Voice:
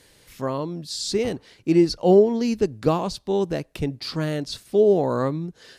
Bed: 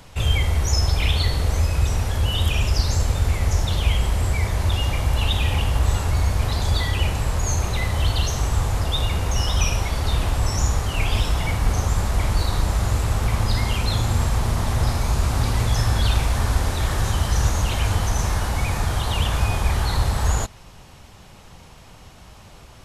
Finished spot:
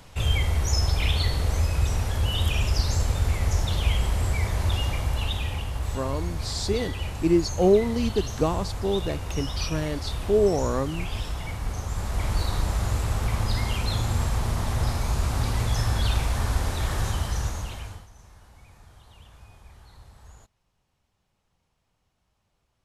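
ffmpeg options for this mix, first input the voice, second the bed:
ffmpeg -i stem1.wav -i stem2.wav -filter_complex "[0:a]adelay=5550,volume=-3.5dB[link_01];[1:a]volume=2dB,afade=type=out:start_time=4.74:duration=0.91:silence=0.473151,afade=type=in:start_time=11.86:duration=0.49:silence=0.530884,afade=type=out:start_time=17.03:duration=1.04:silence=0.0595662[link_02];[link_01][link_02]amix=inputs=2:normalize=0" out.wav

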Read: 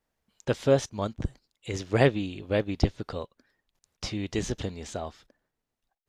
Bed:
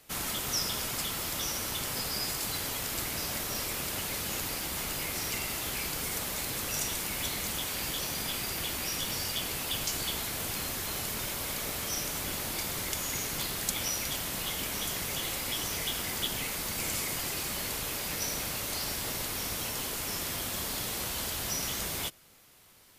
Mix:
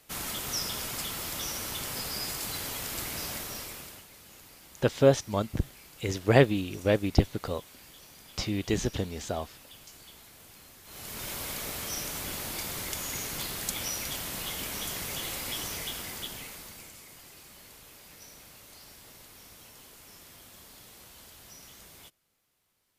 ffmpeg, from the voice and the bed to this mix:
ffmpeg -i stem1.wav -i stem2.wav -filter_complex "[0:a]adelay=4350,volume=1.5dB[link_01];[1:a]volume=15dB,afade=type=out:start_time=3.26:duration=0.8:silence=0.149624,afade=type=in:start_time=10.84:duration=0.49:silence=0.149624,afade=type=out:start_time=15.57:duration=1.36:silence=0.16788[link_02];[link_01][link_02]amix=inputs=2:normalize=0" out.wav

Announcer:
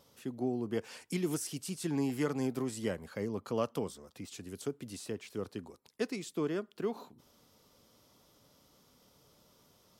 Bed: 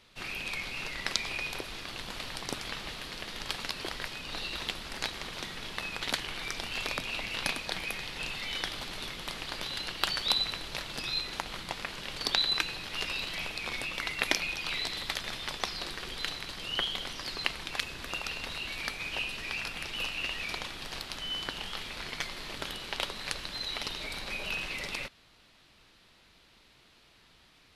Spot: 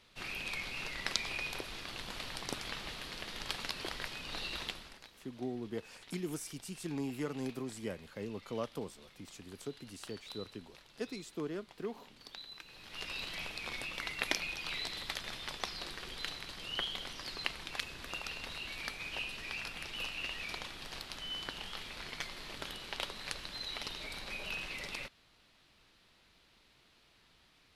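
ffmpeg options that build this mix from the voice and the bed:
ffmpeg -i stem1.wav -i stem2.wav -filter_complex "[0:a]adelay=5000,volume=-5.5dB[link_01];[1:a]volume=12.5dB,afade=type=out:start_time=4.57:duration=0.45:silence=0.125893,afade=type=in:start_time=12.64:duration=0.6:silence=0.158489[link_02];[link_01][link_02]amix=inputs=2:normalize=0" out.wav

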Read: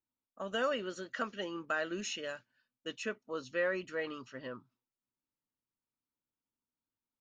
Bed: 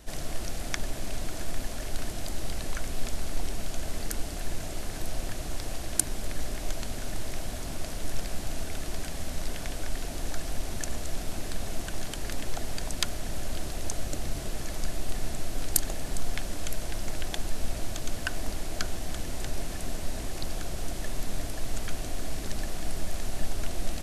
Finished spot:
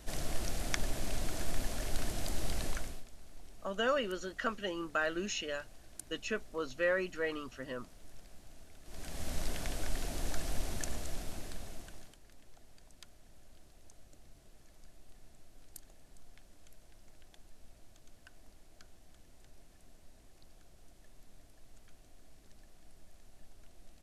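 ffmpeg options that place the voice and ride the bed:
ffmpeg -i stem1.wav -i stem2.wav -filter_complex "[0:a]adelay=3250,volume=1.5dB[link_01];[1:a]volume=16dB,afade=type=out:start_time=2.65:duration=0.39:silence=0.105925,afade=type=in:start_time=8.84:duration=0.48:silence=0.11885,afade=type=out:start_time=10.59:duration=1.6:silence=0.0707946[link_02];[link_01][link_02]amix=inputs=2:normalize=0" out.wav

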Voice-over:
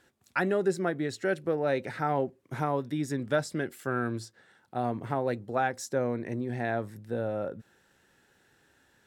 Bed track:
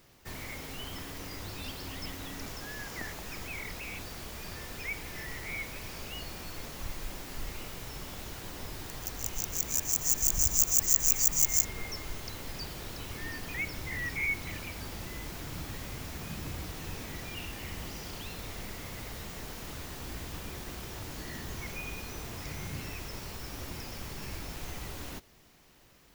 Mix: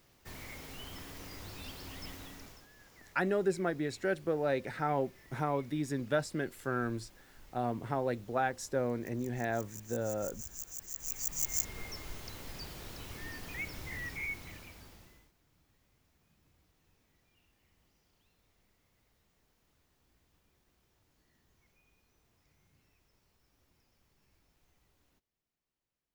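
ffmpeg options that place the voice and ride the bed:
ffmpeg -i stem1.wav -i stem2.wav -filter_complex "[0:a]adelay=2800,volume=-3.5dB[link_01];[1:a]volume=8.5dB,afade=type=out:start_time=2.13:duration=0.55:silence=0.211349,afade=type=in:start_time=10.91:duration=0.87:silence=0.199526,afade=type=out:start_time=13.94:duration=1.38:silence=0.0446684[link_02];[link_01][link_02]amix=inputs=2:normalize=0" out.wav

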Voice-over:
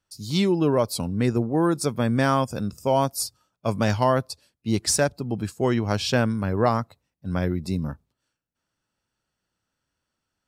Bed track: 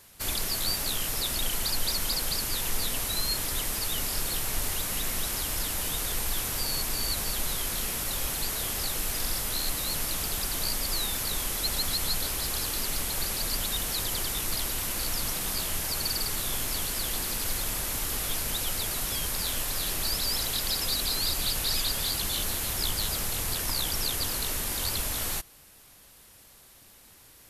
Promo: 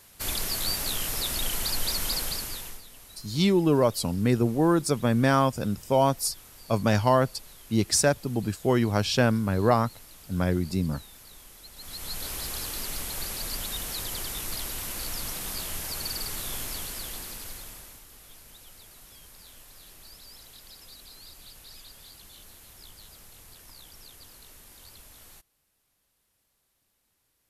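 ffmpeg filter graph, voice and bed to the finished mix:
ffmpeg -i stem1.wav -i stem2.wav -filter_complex "[0:a]adelay=3050,volume=-0.5dB[link_01];[1:a]volume=15.5dB,afade=type=out:start_time=2.17:duration=0.65:silence=0.112202,afade=type=in:start_time=11.75:duration=0.59:silence=0.16788,afade=type=out:start_time=16.6:duration=1.44:silence=0.149624[link_02];[link_01][link_02]amix=inputs=2:normalize=0" out.wav

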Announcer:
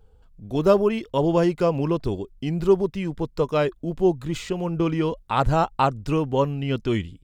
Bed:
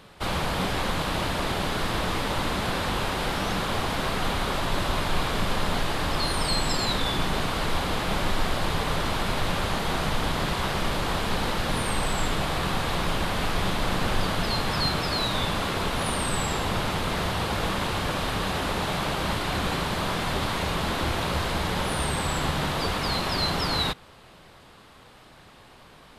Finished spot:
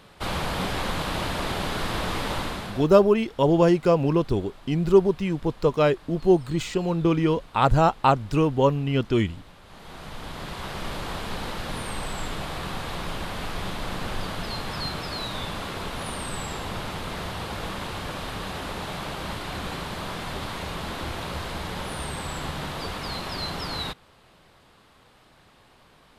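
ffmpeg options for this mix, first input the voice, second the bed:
ffmpeg -i stem1.wav -i stem2.wav -filter_complex "[0:a]adelay=2250,volume=1.5dB[link_01];[1:a]volume=17dB,afade=type=out:start_time=2.33:duration=0.56:silence=0.0749894,afade=type=in:start_time=9.64:duration=1.28:silence=0.125893[link_02];[link_01][link_02]amix=inputs=2:normalize=0" out.wav

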